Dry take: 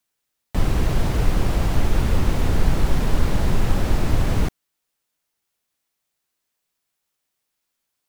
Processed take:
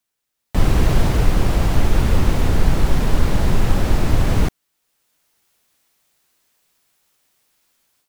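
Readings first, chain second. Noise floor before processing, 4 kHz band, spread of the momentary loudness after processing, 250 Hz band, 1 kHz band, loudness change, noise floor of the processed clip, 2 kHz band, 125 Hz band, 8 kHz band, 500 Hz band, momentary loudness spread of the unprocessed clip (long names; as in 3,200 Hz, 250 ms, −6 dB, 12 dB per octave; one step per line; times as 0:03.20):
−79 dBFS, +3.5 dB, 2 LU, +3.5 dB, +3.5 dB, +3.5 dB, −77 dBFS, +3.5 dB, +3.5 dB, +3.5 dB, +3.5 dB, 2 LU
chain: automatic gain control gain up to 14 dB
level −1 dB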